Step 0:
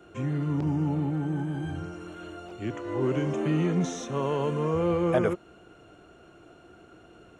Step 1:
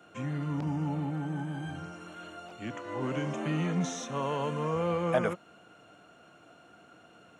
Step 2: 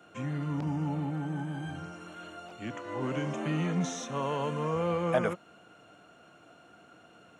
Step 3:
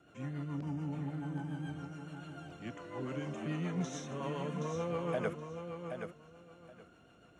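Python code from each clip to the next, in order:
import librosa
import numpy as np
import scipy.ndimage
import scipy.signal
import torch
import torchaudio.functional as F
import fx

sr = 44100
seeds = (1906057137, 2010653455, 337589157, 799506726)

y1 = scipy.signal.sosfilt(scipy.signal.butter(2, 170.0, 'highpass', fs=sr, output='sos'), x)
y1 = fx.peak_eq(y1, sr, hz=370.0, db=-12.0, octaves=0.54)
y2 = y1
y3 = fx.rotary(y2, sr, hz=7.0)
y3 = fx.dmg_noise_band(y3, sr, seeds[0], low_hz=47.0, high_hz=350.0, level_db=-64.0)
y3 = fx.echo_feedback(y3, sr, ms=773, feedback_pct=18, wet_db=-7.0)
y3 = y3 * 10.0 ** (-5.0 / 20.0)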